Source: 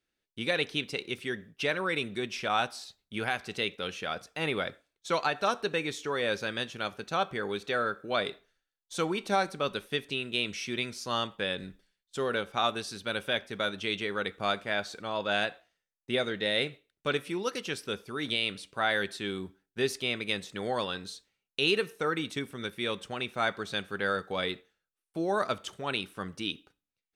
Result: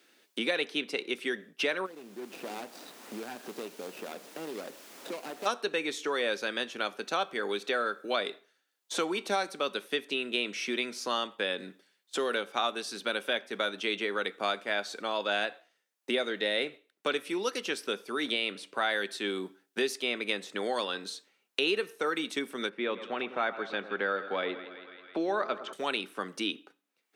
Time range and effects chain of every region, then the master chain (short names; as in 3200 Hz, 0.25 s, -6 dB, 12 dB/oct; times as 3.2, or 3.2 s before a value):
1.85–5.45 median filter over 41 samples + compressor 2:1, threshold -57 dBFS + added noise pink -66 dBFS
22.69–25.73 LPF 1900 Hz + split-band echo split 1400 Hz, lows 0.105 s, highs 0.163 s, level -13.5 dB
whole clip: HPF 240 Hz 24 dB/oct; three-band squash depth 70%